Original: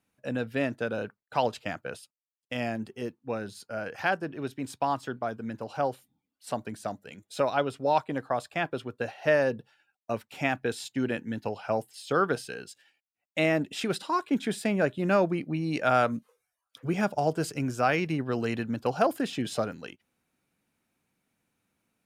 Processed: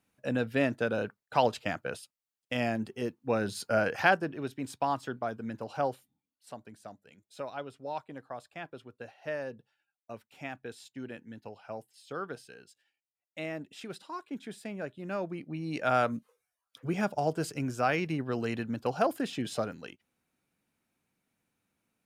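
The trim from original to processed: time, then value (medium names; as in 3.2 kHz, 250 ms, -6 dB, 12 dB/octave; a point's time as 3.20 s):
3.14 s +1 dB
3.70 s +9 dB
4.43 s -2 dB
5.90 s -2 dB
6.55 s -12.5 dB
15.04 s -12.5 dB
15.94 s -3 dB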